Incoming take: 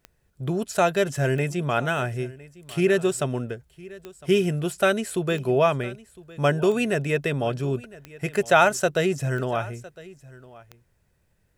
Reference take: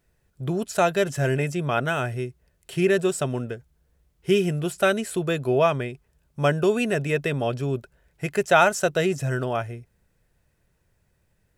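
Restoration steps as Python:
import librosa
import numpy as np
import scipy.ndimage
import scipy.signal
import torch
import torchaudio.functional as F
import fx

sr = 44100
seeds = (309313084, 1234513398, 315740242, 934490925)

y = fx.fix_declick_ar(x, sr, threshold=10.0)
y = fx.fix_echo_inverse(y, sr, delay_ms=1008, level_db=-20.5)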